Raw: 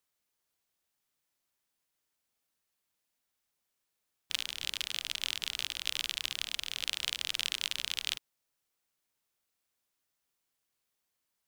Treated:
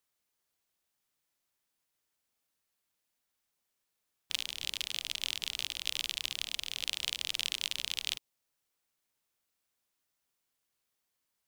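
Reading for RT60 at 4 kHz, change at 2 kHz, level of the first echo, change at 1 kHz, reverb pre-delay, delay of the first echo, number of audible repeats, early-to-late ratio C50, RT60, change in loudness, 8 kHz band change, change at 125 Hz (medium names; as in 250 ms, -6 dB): no reverb, -1.5 dB, no echo, -3.0 dB, no reverb, no echo, no echo, no reverb, no reverb, -0.5 dB, 0.0 dB, 0.0 dB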